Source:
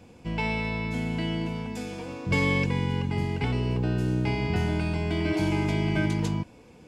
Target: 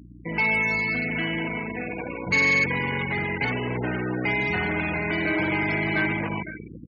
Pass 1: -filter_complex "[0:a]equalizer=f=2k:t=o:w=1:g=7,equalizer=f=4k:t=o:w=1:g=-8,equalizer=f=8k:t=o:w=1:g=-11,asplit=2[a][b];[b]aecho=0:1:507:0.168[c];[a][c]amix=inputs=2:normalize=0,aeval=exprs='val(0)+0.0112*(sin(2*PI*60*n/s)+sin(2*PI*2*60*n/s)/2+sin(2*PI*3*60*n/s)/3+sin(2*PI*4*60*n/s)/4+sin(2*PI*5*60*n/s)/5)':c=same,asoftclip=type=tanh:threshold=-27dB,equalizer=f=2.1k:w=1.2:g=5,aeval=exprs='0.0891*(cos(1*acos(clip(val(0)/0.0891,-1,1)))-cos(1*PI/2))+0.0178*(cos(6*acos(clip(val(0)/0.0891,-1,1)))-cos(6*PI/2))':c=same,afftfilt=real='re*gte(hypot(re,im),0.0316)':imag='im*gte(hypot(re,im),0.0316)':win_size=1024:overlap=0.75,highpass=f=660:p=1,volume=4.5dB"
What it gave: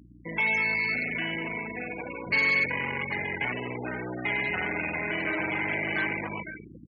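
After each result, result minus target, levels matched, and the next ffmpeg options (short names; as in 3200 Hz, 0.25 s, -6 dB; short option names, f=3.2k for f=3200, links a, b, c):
soft clip: distortion +7 dB; 250 Hz band -4.0 dB
-filter_complex "[0:a]equalizer=f=2k:t=o:w=1:g=7,equalizer=f=4k:t=o:w=1:g=-8,equalizer=f=8k:t=o:w=1:g=-11,asplit=2[a][b];[b]aecho=0:1:507:0.168[c];[a][c]amix=inputs=2:normalize=0,aeval=exprs='val(0)+0.0112*(sin(2*PI*60*n/s)+sin(2*PI*2*60*n/s)/2+sin(2*PI*3*60*n/s)/3+sin(2*PI*4*60*n/s)/4+sin(2*PI*5*60*n/s)/5)':c=same,asoftclip=type=tanh:threshold=-19.5dB,equalizer=f=2.1k:w=1.2:g=5,aeval=exprs='0.0891*(cos(1*acos(clip(val(0)/0.0891,-1,1)))-cos(1*PI/2))+0.0178*(cos(6*acos(clip(val(0)/0.0891,-1,1)))-cos(6*PI/2))':c=same,afftfilt=real='re*gte(hypot(re,im),0.0316)':imag='im*gte(hypot(re,im),0.0316)':win_size=1024:overlap=0.75,highpass=f=660:p=1,volume=4.5dB"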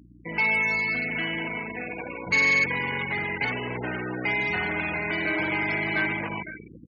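250 Hz band -4.0 dB
-filter_complex "[0:a]equalizer=f=2k:t=o:w=1:g=7,equalizer=f=4k:t=o:w=1:g=-8,equalizer=f=8k:t=o:w=1:g=-11,asplit=2[a][b];[b]aecho=0:1:507:0.168[c];[a][c]amix=inputs=2:normalize=0,aeval=exprs='val(0)+0.0112*(sin(2*PI*60*n/s)+sin(2*PI*2*60*n/s)/2+sin(2*PI*3*60*n/s)/3+sin(2*PI*4*60*n/s)/4+sin(2*PI*5*60*n/s)/5)':c=same,asoftclip=type=tanh:threshold=-19.5dB,equalizer=f=2.1k:w=1.2:g=5,aeval=exprs='0.0891*(cos(1*acos(clip(val(0)/0.0891,-1,1)))-cos(1*PI/2))+0.0178*(cos(6*acos(clip(val(0)/0.0891,-1,1)))-cos(6*PI/2))':c=same,afftfilt=real='re*gte(hypot(re,im),0.0316)':imag='im*gte(hypot(re,im),0.0316)':win_size=1024:overlap=0.75,highpass=f=300:p=1,volume=4.5dB"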